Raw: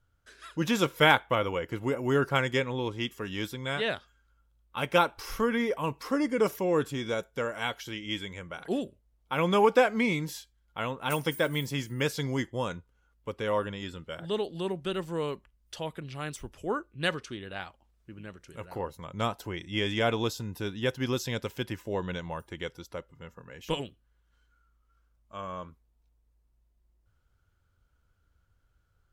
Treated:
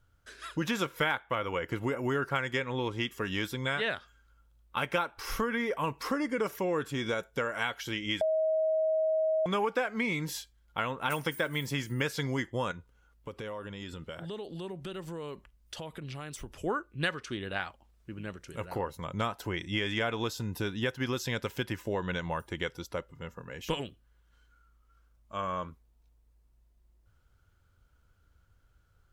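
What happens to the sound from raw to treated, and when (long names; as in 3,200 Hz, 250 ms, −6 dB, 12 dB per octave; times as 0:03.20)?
0:08.21–0:09.46: beep over 634 Hz −19 dBFS
0:12.71–0:16.60: downward compressor, threshold −41 dBFS
whole clip: dynamic equaliser 1,600 Hz, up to +6 dB, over −43 dBFS, Q 1; downward compressor 4 to 1, threshold −33 dBFS; level +4 dB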